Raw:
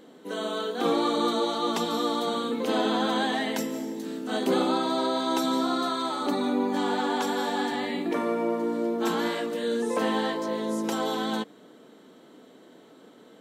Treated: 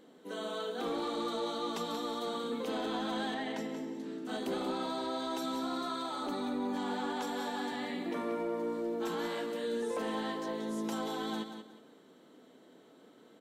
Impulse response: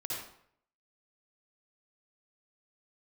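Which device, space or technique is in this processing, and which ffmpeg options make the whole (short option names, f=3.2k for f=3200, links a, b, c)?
soft clipper into limiter: -filter_complex "[0:a]asoftclip=type=tanh:threshold=-17dB,alimiter=limit=-21dB:level=0:latency=1:release=106,asettb=1/sr,asplit=3[a][b][c];[a]atrim=end=3.344[d];[b]atrim=start=3.34:end=4.25,asetpts=PTS-STARTPTS,afade=t=in:d=0.004:c=qsin,afade=t=out:st=0.906:d=0.004:c=qsin,aemphasis=mode=reproduction:type=50fm[e];[c]atrim=start=4.246[f];[d][e]acrossfade=d=0.004:c1=hsin:c2=qsin[g];[g][f]acrossfade=d=0.004:c1=qsin:c2=hsin,aecho=1:1:183|366|549:0.355|0.0958|0.0259,volume=-7.5dB"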